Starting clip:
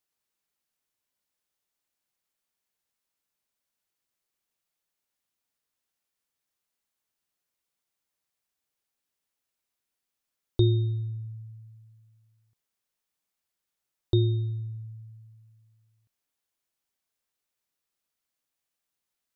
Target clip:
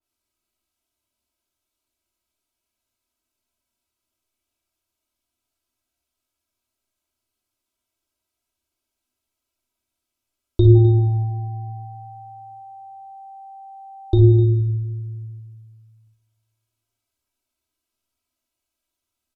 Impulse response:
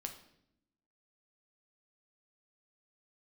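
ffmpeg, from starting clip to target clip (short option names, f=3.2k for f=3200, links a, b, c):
-filter_complex "[0:a]asuperstop=centerf=1800:order=4:qfactor=5,lowshelf=f=320:g=7.5,aecho=1:1:3.1:0.91[a];[1:a]atrim=start_sample=2205,asetrate=26901,aresample=44100[b];[a][b]afir=irnorm=-1:irlink=0,asettb=1/sr,asplit=3[c][d][e];[c]atrim=end=10.754[f];[d]atrim=start=10.75:end=14.18,asetpts=PTS-STARTPTS,afade=t=in:d=0.004:c=qsin,afade=t=out:st=3.426:d=0.004:c=qsin,aeval=exprs='val(0)+0.0141*sin(2*PI*780*n/s)':c=same[g];[e]atrim=start=14.176[h];[f][g]acrossfade=d=0.004:c1=hsin:c2=qsin[i];[i][h]acrossfade=d=0.004:c1=qsin:c2=hsin,aecho=1:1:56|254:0.376|0.178,adynamicequalizer=threshold=0.00562:dfrequency=2300:dqfactor=0.7:tfrequency=2300:tqfactor=0.7:attack=5:release=100:ratio=0.375:range=2:mode=cutabove:tftype=highshelf"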